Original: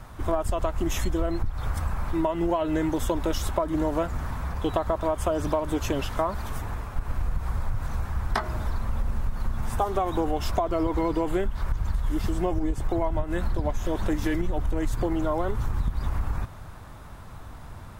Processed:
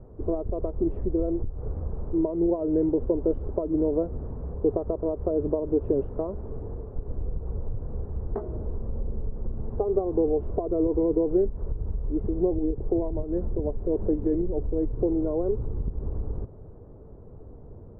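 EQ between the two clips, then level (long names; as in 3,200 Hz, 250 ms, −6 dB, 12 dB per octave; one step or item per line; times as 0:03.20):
low-pass with resonance 440 Hz, resonance Q 4.9
high-frequency loss of the air 230 metres
−3.5 dB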